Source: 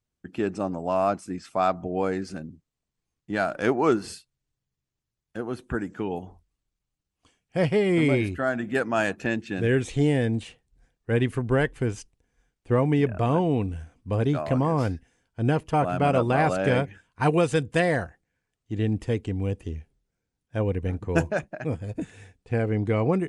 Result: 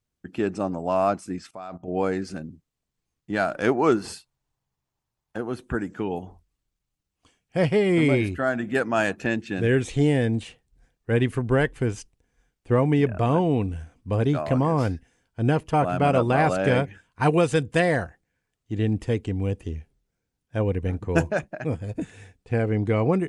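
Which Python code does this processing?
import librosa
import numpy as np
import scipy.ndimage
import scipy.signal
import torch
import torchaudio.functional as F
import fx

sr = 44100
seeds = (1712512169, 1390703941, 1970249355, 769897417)

y = fx.level_steps(x, sr, step_db=19, at=(1.47, 1.88))
y = fx.peak_eq(y, sr, hz=880.0, db=11.5, octaves=0.98, at=(4.05, 5.38))
y = y * librosa.db_to_amplitude(1.5)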